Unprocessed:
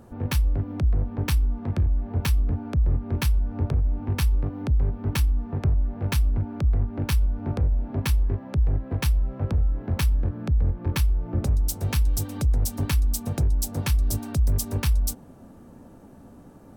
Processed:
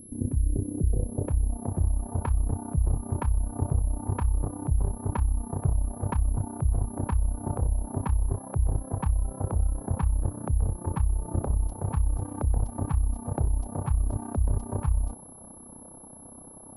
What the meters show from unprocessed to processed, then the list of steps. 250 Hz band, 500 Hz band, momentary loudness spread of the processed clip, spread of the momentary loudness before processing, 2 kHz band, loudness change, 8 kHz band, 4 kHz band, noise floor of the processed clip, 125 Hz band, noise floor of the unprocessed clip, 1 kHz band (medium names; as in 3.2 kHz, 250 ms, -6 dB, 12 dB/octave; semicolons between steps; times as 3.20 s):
-2.5 dB, -1.0 dB, 3 LU, 2 LU, -13.0 dB, -3.5 dB, -5.0 dB, under -25 dB, -47 dBFS, -3.0 dB, -48 dBFS, +2.0 dB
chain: low-pass sweep 300 Hz -> 940 Hz, 0.33–1.91 s; AM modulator 32 Hz, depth 70%; whistle 11 kHz -47 dBFS